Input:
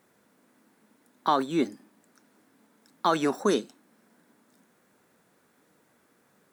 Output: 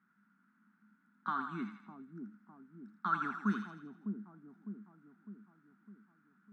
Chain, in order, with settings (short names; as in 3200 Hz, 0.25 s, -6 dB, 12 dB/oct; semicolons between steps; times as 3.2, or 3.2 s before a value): double band-pass 530 Hz, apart 2.8 oct; split-band echo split 700 Hz, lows 0.605 s, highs 82 ms, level -6 dB; gain +1 dB